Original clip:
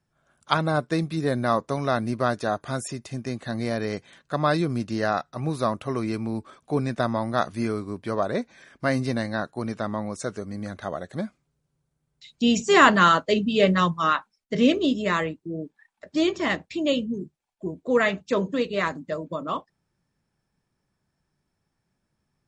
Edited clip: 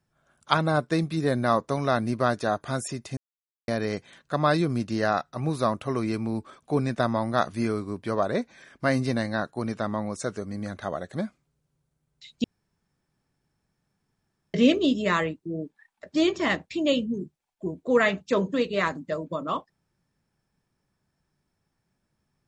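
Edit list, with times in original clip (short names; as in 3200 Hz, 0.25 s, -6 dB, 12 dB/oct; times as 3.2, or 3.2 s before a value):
3.17–3.68 mute
12.44–14.54 room tone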